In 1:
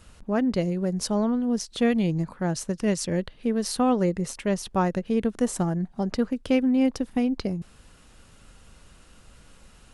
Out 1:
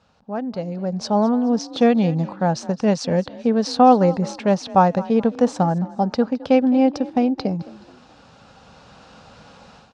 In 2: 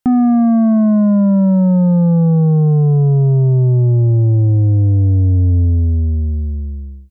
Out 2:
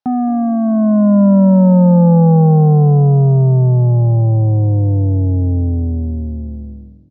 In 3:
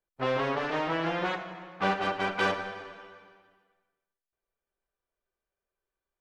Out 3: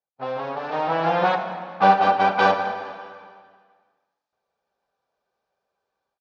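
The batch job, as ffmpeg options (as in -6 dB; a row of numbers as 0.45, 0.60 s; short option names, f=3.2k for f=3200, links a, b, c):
-filter_complex "[0:a]dynaudnorm=f=610:g=3:m=16dB,highpass=130,equalizer=f=350:t=q:w=4:g=-8,equalizer=f=520:t=q:w=4:g=3,equalizer=f=800:t=q:w=4:g=9,equalizer=f=2k:t=q:w=4:g=-7,equalizer=f=3k:t=q:w=4:g=-5,lowpass=f=5.3k:w=0.5412,lowpass=f=5.3k:w=1.3066,asplit=2[a][b];[b]asplit=3[c][d][e];[c]adelay=213,afreqshift=35,volume=-19dB[f];[d]adelay=426,afreqshift=70,volume=-27dB[g];[e]adelay=639,afreqshift=105,volume=-34.9dB[h];[f][g][h]amix=inputs=3:normalize=0[i];[a][i]amix=inputs=2:normalize=0,volume=-4.5dB"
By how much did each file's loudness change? +6.0, +1.0, +9.0 LU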